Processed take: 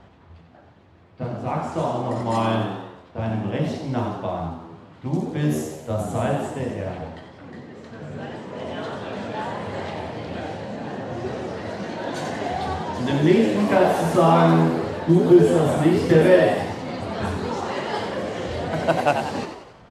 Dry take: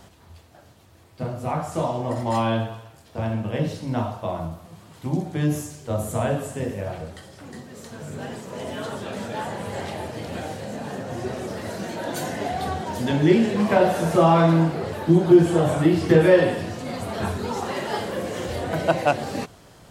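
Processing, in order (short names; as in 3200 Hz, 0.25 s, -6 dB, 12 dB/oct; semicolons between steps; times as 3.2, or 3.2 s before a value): low-pass opened by the level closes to 2400 Hz, open at -17.5 dBFS; frequency-shifting echo 91 ms, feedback 49%, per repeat +83 Hz, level -7.5 dB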